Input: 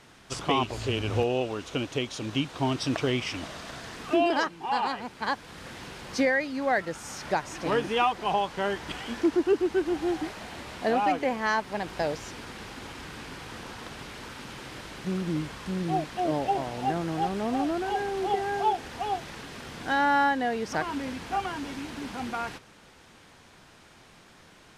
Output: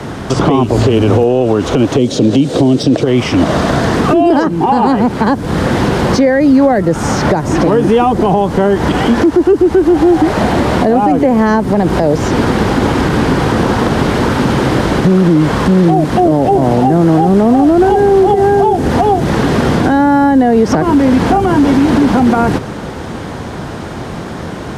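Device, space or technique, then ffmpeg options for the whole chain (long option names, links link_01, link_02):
mastering chain: -filter_complex "[0:a]asplit=3[link_01][link_02][link_03];[link_01]afade=type=out:start_time=1.97:duration=0.02[link_04];[link_02]equalizer=frequency=125:width_type=o:width=1:gain=9,equalizer=frequency=250:width_type=o:width=1:gain=10,equalizer=frequency=500:width_type=o:width=1:gain=11,equalizer=frequency=1000:width_type=o:width=1:gain=-9,equalizer=frequency=4000:width_type=o:width=1:gain=7,equalizer=frequency=8000:width_type=o:width=1:gain=8,afade=type=in:start_time=1.97:duration=0.02,afade=type=out:start_time=3.03:duration=0.02[link_05];[link_03]afade=type=in:start_time=3.03:duration=0.02[link_06];[link_04][link_05][link_06]amix=inputs=3:normalize=0,highpass=47,equalizer=frequency=2500:width_type=o:width=0.37:gain=-3.5,acrossover=split=140|430|6800[link_07][link_08][link_09][link_10];[link_07]acompressor=threshold=-52dB:ratio=4[link_11];[link_08]acompressor=threshold=-38dB:ratio=4[link_12];[link_09]acompressor=threshold=-38dB:ratio=4[link_13];[link_10]acompressor=threshold=-53dB:ratio=4[link_14];[link_11][link_12][link_13][link_14]amix=inputs=4:normalize=0,acompressor=threshold=-38dB:ratio=3,asoftclip=type=tanh:threshold=-28.5dB,tiltshelf=frequency=1200:gain=8,alimiter=level_in=28.5dB:limit=-1dB:release=50:level=0:latency=1,volume=-1dB"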